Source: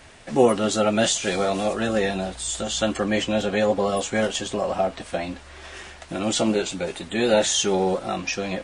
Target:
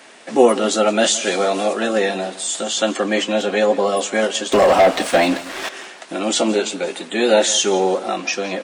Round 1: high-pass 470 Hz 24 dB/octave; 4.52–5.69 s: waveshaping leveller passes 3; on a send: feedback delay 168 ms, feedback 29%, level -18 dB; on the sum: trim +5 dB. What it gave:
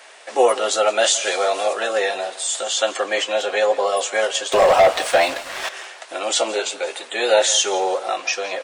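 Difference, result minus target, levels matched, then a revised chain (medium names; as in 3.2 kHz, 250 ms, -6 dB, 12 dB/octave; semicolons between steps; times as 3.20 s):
250 Hz band -12.5 dB
high-pass 230 Hz 24 dB/octave; 4.52–5.69 s: waveshaping leveller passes 3; on a send: feedback delay 168 ms, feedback 29%, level -18 dB; on the sum: trim +5 dB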